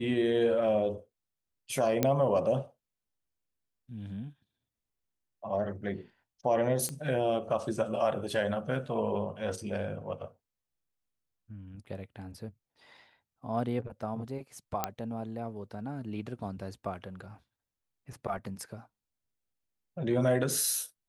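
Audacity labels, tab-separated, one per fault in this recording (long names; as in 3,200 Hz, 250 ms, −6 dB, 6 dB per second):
2.030000	2.030000	click −11 dBFS
6.890000	6.890000	click −22 dBFS
14.840000	14.840000	click −13 dBFS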